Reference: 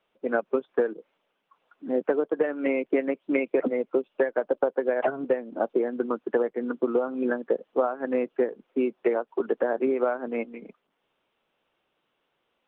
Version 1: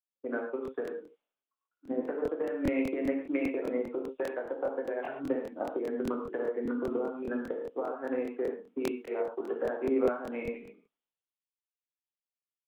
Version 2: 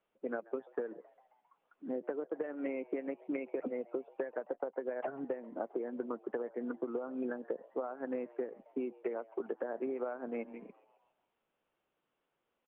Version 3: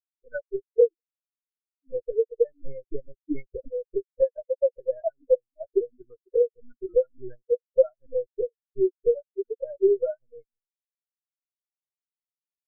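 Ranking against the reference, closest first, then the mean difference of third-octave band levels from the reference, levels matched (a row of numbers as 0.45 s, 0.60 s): 2, 1, 3; 2.0 dB, 6.0 dB, 12.5 dB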